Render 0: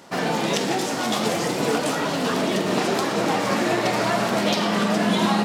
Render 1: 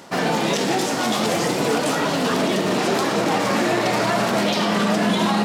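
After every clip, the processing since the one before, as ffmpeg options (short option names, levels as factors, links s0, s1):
-af "alimiter=limit=0.2:level=0:latency=1:release=19,areverse,acompressor=mode=upward:threshold=0.0562:ratio=2.5,areverse,volume=1.41"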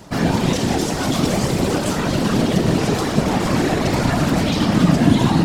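-af "bass=f=250:g=14,treble=f=4000:g=3,afftfilt=real='hypot(re,im)*cos(2*PI*random(0))':imag='hypot(re,im)*sin(2*PI*random(1))':win_size=512:overlap=0.75,volume=1.5"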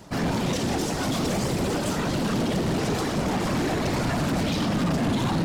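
-af "asoftclip=type=hard:threshold=0.158,volume=0.562"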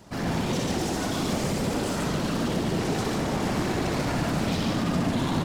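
-af "aecho=1:1:64.14|142.9:0.631|0.794,volume=0.596"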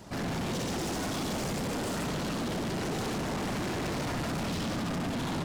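-af "asoftclip=type=tanh:threshold=0.0237,volume=1.26"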